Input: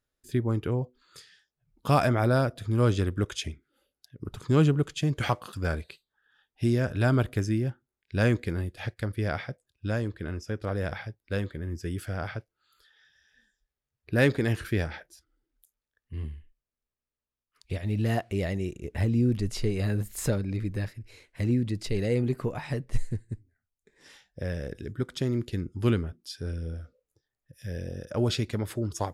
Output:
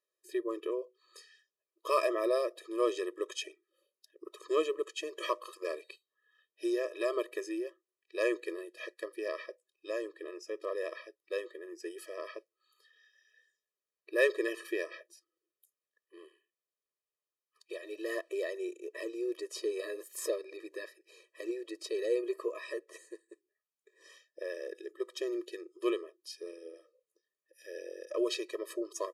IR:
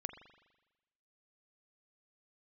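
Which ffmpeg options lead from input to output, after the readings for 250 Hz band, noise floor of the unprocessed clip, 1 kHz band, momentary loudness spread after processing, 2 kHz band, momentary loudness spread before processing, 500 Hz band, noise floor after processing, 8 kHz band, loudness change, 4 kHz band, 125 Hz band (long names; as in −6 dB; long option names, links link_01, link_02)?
−11.0 dB, below −85 dBFS, −6.5 dB, 16 LU, −5.5 dB, 14 LU, −2.0 dB, below −85 dBFS, −4.5 dB, −7.0 dB, −5.0 dB, below −40 dB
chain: -af "aresample=32000,aresample=44100,afftfilt=real='re*eq(mod(floor(b*sr/1024/330),2),1)':imag='im*eq(mod(floor(b*sr/1024/330),2),1)':win_size=1024:overlap=0.75,volume=-1.5dB"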